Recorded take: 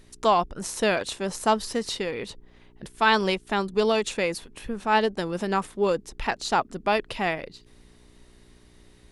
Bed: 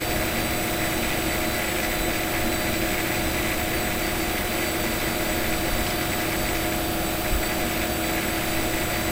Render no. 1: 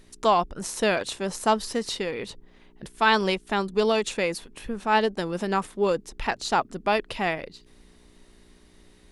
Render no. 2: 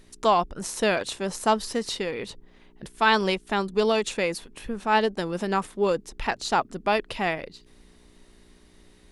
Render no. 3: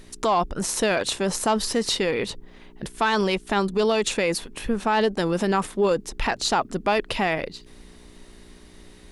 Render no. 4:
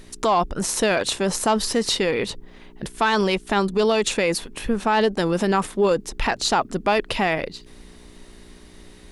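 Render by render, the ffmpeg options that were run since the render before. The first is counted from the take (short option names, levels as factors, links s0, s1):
-af "bandreject=f=60:t=h:w=4,bandreject=f=120:t=h:w=4"
-af anull
-af "acontrast=87,alimiter=limit=0.224:level=0:latency=1:release=39"
-af "volume=1.26"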